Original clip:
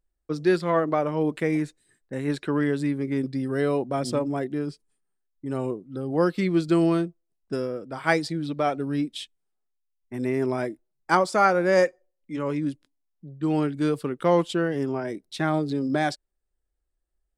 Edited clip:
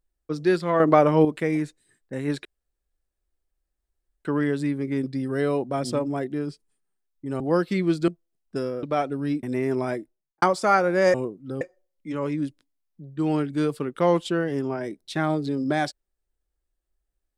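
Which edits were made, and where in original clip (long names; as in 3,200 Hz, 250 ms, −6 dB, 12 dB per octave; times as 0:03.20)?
0:00.80–0:01.25: clip gain +7.5 dB
0:02.45: splice in room tone 1.80 s
0:05.60–0:06.07: move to 0:11.85
0:06.75–0:07.05: remove
0:07.80–0:08.51: remove
0:09.11–0:10.14: remove
0:10.70–0:11.13: fade out and dull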